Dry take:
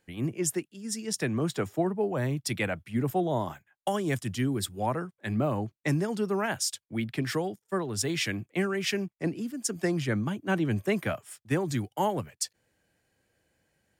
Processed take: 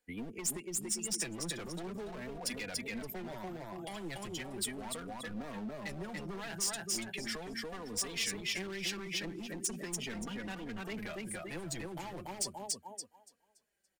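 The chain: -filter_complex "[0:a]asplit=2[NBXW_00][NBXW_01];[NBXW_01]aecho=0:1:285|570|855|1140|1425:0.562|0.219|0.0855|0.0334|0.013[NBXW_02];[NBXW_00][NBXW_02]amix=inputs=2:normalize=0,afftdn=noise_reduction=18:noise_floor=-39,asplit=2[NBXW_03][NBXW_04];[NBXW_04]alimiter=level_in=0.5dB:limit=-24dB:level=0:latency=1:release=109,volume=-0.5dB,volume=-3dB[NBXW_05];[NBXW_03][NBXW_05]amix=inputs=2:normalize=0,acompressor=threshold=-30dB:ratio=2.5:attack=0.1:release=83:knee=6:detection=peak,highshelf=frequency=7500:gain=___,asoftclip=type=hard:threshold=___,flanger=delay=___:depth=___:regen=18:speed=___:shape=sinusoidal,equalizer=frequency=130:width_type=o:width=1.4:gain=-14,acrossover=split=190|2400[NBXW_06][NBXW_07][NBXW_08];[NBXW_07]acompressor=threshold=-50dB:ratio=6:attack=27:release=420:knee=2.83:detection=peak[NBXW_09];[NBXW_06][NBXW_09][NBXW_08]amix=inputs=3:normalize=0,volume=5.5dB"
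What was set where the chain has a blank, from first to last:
7, -30dB, 4.1, 1.9, 0.38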